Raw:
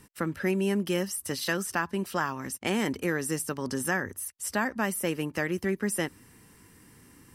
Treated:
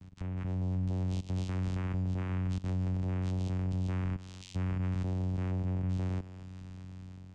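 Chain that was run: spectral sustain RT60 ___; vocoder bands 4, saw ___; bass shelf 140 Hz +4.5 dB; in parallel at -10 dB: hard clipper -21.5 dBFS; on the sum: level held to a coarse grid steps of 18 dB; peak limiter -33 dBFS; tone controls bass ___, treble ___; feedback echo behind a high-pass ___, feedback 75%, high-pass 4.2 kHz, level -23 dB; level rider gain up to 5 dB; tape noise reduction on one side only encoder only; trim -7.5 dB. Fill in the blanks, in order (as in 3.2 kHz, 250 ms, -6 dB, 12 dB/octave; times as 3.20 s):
0.80 s, 92.4 Hz, +13 dB, +1 dB, 271 ms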